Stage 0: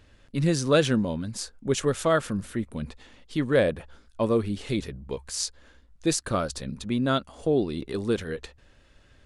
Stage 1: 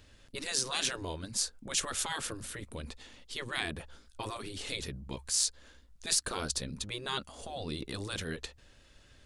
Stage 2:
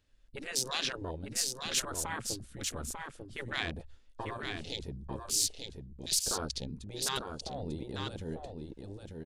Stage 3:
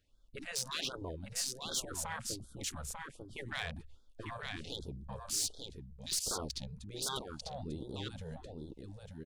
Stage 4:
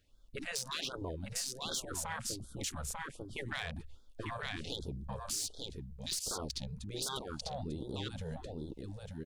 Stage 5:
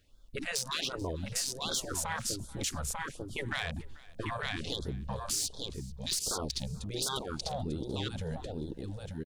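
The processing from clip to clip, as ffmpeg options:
ffmpeg -i in.wav -filter_complex "[0:a]acrossover=split=3200[link_01][link_02];[link_02]acontrast=83[link_03];[link_01][link_03]amix=inputs=2:normalize=0,afftfilt=real='re*lt(hypot(re,im),0.178)':imag='im*lt(hypot(re,im),0.178)':win_size=1024:overlap=0.75,volume=-3dB" out.wav
ffmpeg -i in.wav -af "afwtdn=0.0126,aecho=1:1:895:0.562" out.wav
ffmpeg -i in.wav -af "asoftclip=type=tanh:threshold=-24.5dB,afftfilt=real='re*(1-between(b*sr/1024,280*pow(2300/280,0.5+0.5*sin(2*PI*1.3*pts/sr))/1.41,280*pow(2300/280,0.5+0.5*sin(2*PI*1.3*pts/sr))*1.41))':imag='im*(1-between(b*sr/1024,280*pow(2300/280,0.5+0.5*sin(2*PI*1.3*pts/sr))/1.41,280*pow(2300/280,0.5+0.5*sin(2*PI*1.3*pts/sr))*1.41))':win_size=1024:overlap=0.75,volume=-2.5dB" out.wav
ffmpeg -i in.wav -af "acompressor=threshold=-39dB:ratio=6,volume=4dB" out.wav
ffmpeg -i in.wav -af "aecho=1:1:437|874:0.075|0.021,volume=4.5dB" out.wav

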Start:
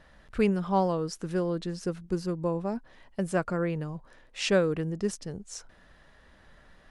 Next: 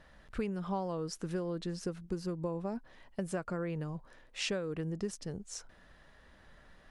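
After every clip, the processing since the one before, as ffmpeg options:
ffmpeg -i in.wav -af "acompressor=threshold=-29dB:ratio=10,volume=-2.5dB" out.wav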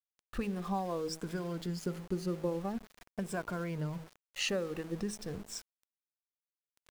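ffmpeg -i in.wav -af "afftfilt=real='re*pow(10,10/40*sin(2*PI*(1.7*log(max(b,1)*sr/1024/100)/log(2)-(-0.46)*(pts-256)/sr)))':imag='im*pow(10,10/40*sin(2*PI*(1.7*log(max(b,1)*sr/1024/100)/log(2)-(-0.46)*(pts-256)/sr)))':win_size=1024:overlap=0.75,bandreject=frequency=53.32:width_type=h:width=4,bandreject=frequency=106.64:width_type=h:width=4,bandreject=frequency=159.96:width_type=h:width=4,bandreject=frequency=213.28:width_type=h:width=4,bandreject=frequency=266.6:width_type=h:width=4,bandreject=frequency=319.92:width_type=h:width=4,bandreject=frequency=373.24:width_type=h:width=4,bandreject=frequency=426.56:width_type=h:width=4,bandreject=frequency=479.88:width_type=h:width=4,bandreject=frequency=533.2:width_type=h:width=4,aeval=exprs='val(0)*gte(abs(val(0)),0.00473)':channel_layout=same" out.wav

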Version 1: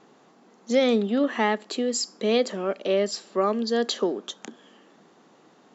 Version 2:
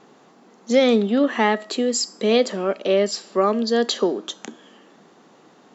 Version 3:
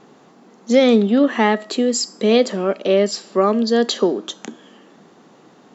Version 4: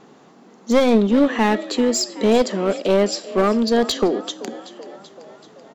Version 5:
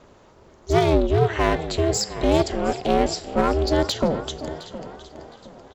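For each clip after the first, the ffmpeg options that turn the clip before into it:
ffmpeg -i in.wav -af "bandreject=frequency=319.8:width_type=h:width=4,bandreject=frequency=639.6:width_type=h:width=4,bandreject=frequency=959.4:width_type=h:width=4,bandreject=frequency=1279.2:width_type=h:width=4,bandreject=frequency=1599:width_type=h:width=4,bandreject=frequency=1918.8:width_type=h:width=4,bandreject=frequency=2238.6:width_type=h:width=4,bandreject=frequency=2558.4:width_type=h:width=4,bandreject=frequency=2878.2:width_type=h:width=4,bandreject=frequency=3198:width_type=h:width=4,bandreject=frequency=3517.8:width_type=h:width=4,bandreject=frequency=3837.6:width_type=h:width=4,bandreject=frequency=4157.4:width_type=h:width=4,bandreject=frequency=4477.2:width_type=h:width=4,bandreject=frequency=4797:width_type=h:width=4,bandreject=frequency=5116.8:width_type=h:width=4,bandreject=frequency=5436.6:width_type=h:width=4,bandreject=frequency=5756.4:width_type=h:width=4,bandreject=frequency=6076.2:width_type=h:width=4,bandreject=frequency=6396:width_type=h:width=4,bandreject=frequency=6715.8:width_type=h:width=4,bandreject=frequency=7035.6:width_type=h:width=4,bandreject=frequency=7355.4:width_type=h:width=4,bandreject=frequency=7675.2:width_type=h:width=4,bandreject=frequency=7995:width_type=h:width=4,bandreject=frequency=8314.8:width_type=h:width=4,bandreject=frequency=8634.6:width_type=h:width=4,bandreject=frequency=8954.4:width_type=h:width=4,bandreject=frequency=9274.2:width_type=h:width=4,bandreject=frequency=9594:width_type=h:width=4,bandreject=frequency=9913.8:width_type=h:width=4,bandreject=frequency=10233.6:width_type=h:width=4,volume=4.5dB" out.wav
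ffmpeg -i in.wav -af "lowshelf=frequency=270:gain=5.5,volume=1.5dB" out.wav
ffmpeg -i in.wav -filter_complex "[0:a]asplit=7[link_01][link_02][link_03][link_04][link_05][link_06][link_07];[link_02]adelay=383,afreqshift=40,volume=-18dB[link_08];[link_03]adelay=766,afreqshift=80,volume=-22.3dB[link_09];[link_04]adelay=1149,afreqshift=120,volume=-26.6dB[link_10];[link_05]adelay=1532,afreqshift=160,volume=-30.9dB[link_11];[link_06]adelay=1915,afreqshift=200,volume=-35.2dB[link_12];[link_07]adelay=2298,afreqshift=240,volume=-39.5dB[link_13];[link_01][link_08][link_09][link_10][link_11][link_12][link_13]amix=inputs=7:normalize=0,aeval=exprs='clip(val(0),-1,0.158)':channel_layout=same" out.wav
ffmpeg -i in.wav -filter_complex "[0:a]asplit=2[link_01][link_02];[link_02]adelay=713,lowpass=frequency=4300:poles=1,volume=-15dB,asplit=2[link_03][link_04];[link_04]adelay=713,lowpass=frequency=4300:poles=1,volume=0.34,asplit=2[link_05][link_06];[link_06]adelay=713,lowpass=frequency=4300:poles=1,volume=0.34[link_07];[link_01][link_03][link_05][link_07]amix=inputs=4:normalize=0,aeval=exprs='val(0)*sin(2*PI*160*n/s)':channel_layout=same" out.wav

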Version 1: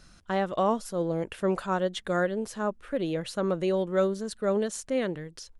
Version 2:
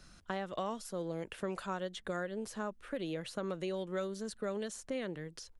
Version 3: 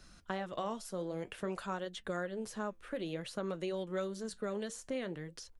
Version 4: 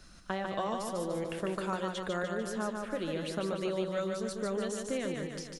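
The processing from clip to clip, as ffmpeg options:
ffmpeg -i in.wav -filter_complex "[0:a]acrossover=split=140|1700[link_01][link_02][link_03];[link_01]acompressor=threshold=-53dB:ratio=4[link_04];[link_02]acompressor=threshold=-34dB:ratio=4[link_05];[link_03]acompressor=threshold=-43dB:ratio=4[link_06];[link_04][link_05][link_06]amix=inputs=3:normalize=0,volume=-2.5dB" out.wav
ffmpeg -i in.wav -af "flanger=delay=2.7:depth=7.9:regen=-73:speed=0.54:shape=triangular,volume=4dB" out.wav
ffmpeg -i in.wav -af "aecho=1:1:148|296|444|592|740|888|1036:0.631|0.347|0.191|0.105|0.0577|0.0318|0.0175,volume=3dB" out.wav

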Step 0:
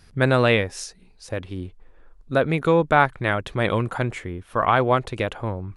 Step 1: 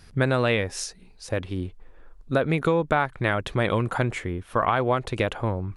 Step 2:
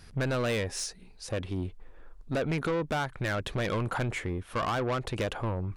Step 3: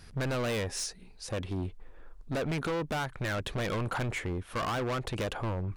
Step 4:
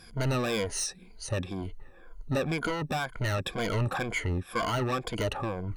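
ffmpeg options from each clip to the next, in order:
ffmpeg -i in.wav -af "acompressor=threshold=-20dB:ratio=6,volume=2dB" out.wav
ffmpeg -i in.wav -af "asoftclip=type=tanh:threshold=-24dB,volume=-1dB" out.wav
ffmpeg -i in.wav -af "volume=29dB,asoftclip=hard,volume=-29dB" out.wav
ffmpeg -i in.wav -af "afftfilt=real='re*pow(10,15/40*sin(2*PI*(1.8*log(max(b,1)*sr/1024/100)/log(2)-(-2)*(pts-256)/sr)))':imag='im*pow(10,15/40*sin(2*PI*(1.8*log(max(b,1)*sr/1024/100)/log(2)-(-2)*(pts-256)/sr)))':win_size=1024:overlap=0.75" out.wav

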